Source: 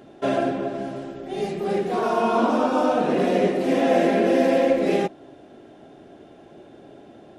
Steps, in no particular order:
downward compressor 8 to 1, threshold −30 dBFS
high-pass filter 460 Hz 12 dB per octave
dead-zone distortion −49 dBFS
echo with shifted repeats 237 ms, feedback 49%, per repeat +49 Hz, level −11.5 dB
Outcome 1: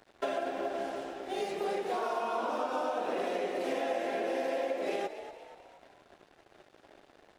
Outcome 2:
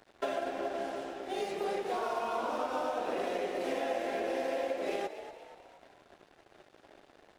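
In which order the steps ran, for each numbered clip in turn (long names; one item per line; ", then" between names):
high-pass filter, then dead-zone distortion, then downward compressor, then echo with shifted repeats
high-pass filter, then downward compressor, then dead-zone distortion, then echo with shifted repeats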